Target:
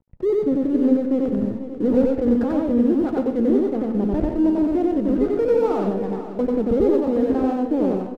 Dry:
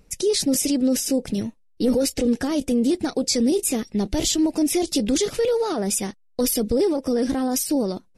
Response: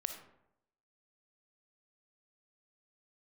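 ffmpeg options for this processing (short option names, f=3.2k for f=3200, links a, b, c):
-filter_complex "[0:a]lowpass=f=1.4k:w=0.5412,lowpass=f=1.4k:w=1.3066,adynamicsmooth=sensitivity=7:basefreq=860,aeval=exprs='sgn(val(0))*max(abs(val(0))-0.00299,0)':c=same,aecho=1:1:491|982|1473|1964:0.251|0.108|0.0464|0.02,asplit=2[a][b];[1:a]atrim=start_sample=2205,asetrate=61740,aresample=44100,adelay=92[c];[b][c]afir=irnorm=-1:irlink=0,volume=3dB[d];[a][d]amix=inputs=2:normalize=0"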